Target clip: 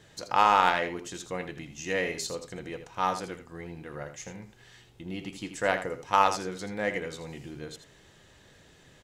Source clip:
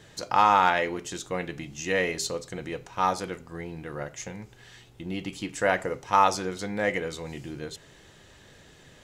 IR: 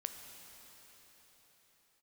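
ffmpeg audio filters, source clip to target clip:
-af "aeval=exprs='0.447*(cos(1*acos(clip(val(0)/0.447,-1,1)))-cos(1*PI/2))+0.0562*(cos(3*acos(clip(val(0)/0.447,-1,1)))-cos(3*PI/2))':channel_layout=same,aecho=1:1:81:0.299"

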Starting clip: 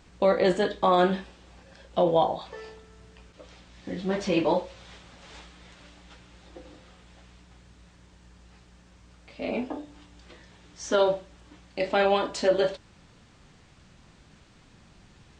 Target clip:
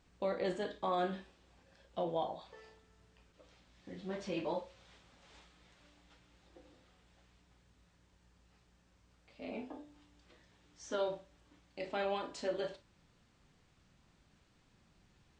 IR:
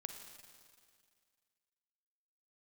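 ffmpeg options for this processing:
-filter_complex "[1:a]atrim=start_sample=2205,atrim=end_sample=4410,asetrate=70560,aresample=44100[link_01];[0:a][link_01]afir=irnorm=-1:irlink=0,volume=-5.5dB"

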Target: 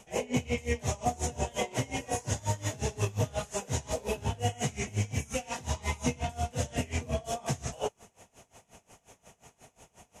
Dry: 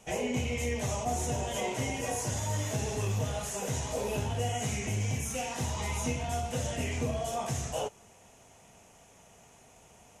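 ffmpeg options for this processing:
ffmpeg -i in.wav -filter_complex "[0:a]acrossover=split=8700[link_01][link_02];[link_02]acompressor=threshold=-52dB:ratio=4:attack=1:release=60[link_03];[link_01][link_03]amix=inputs=2:normalize=0,aeval=exprs='val(0)*pow(10,-23*(0.5-0.5*cos(2*PI*5.6*n/s))/20)':channel_layout=same,volume=5.5dB" out.wav

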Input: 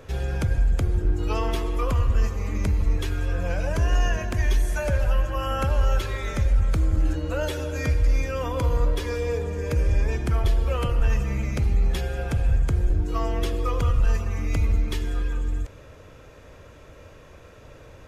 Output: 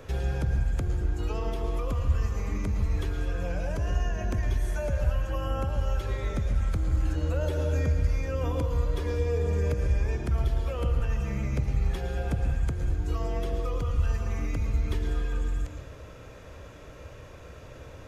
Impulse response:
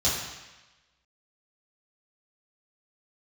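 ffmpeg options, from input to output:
-filter_complex "[0:a]acrossover=split=760|1800[link_01][link_02][link_03];[link_01]acompressor=threshold=-24dB:ratio=4[link_04];[link_02]acompressor=threshold=-46dB:ratio=4[link_05];[link_03]acompressor=threshold=-48dB:ratio=4[link_06];[link_04][link_05][link_06]amix=inputs=3:normalize=0,alimiter=limit=-21dB:level=0:latency=1:release=159,asplit=2[link_07][link_08];[1:a]atrim=start_sample=2205,adelay=108[link_09];[link_08][link_09]afir=irnorm=-1:irlink=0,volume=-20dB[link_10];[link_07][link_10]amix=inputs=2:normalize=0"

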